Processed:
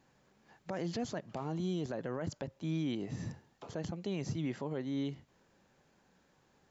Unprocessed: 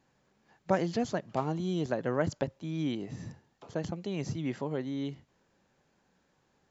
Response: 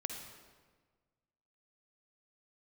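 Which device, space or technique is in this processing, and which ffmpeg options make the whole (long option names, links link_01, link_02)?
stacked limiters: -af "alimiter=limit=-19.5dB:level=0:latency=1:release=141,alimiter=limit=-24dB:level=0:latency=1:release=18,alimiter=level_in=5.5dB:limit=-24dB:level=0:latency=1:release=331,volume=-5.5dB,volume=2dB"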